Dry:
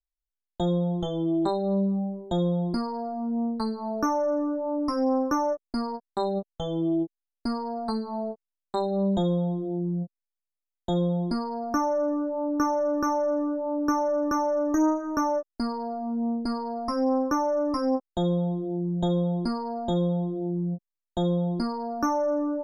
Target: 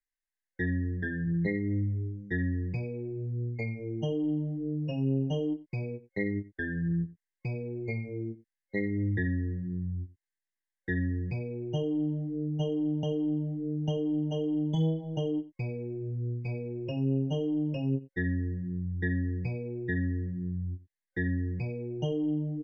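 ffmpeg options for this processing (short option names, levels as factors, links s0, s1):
-filter_complex "[0:a]superequalizer=10b=0.562:12b=0.447:13b=3.98,acrossover=split=140[s0][s1];[s0]acompressor=threshold=0.002:ratio=5[s2];[s2][s1]amix=inputs=2:normalize=0,asetrate=22696,aresample=44100,atempo=1.94306,aecho=1:1:89:0.133,volume=0.596"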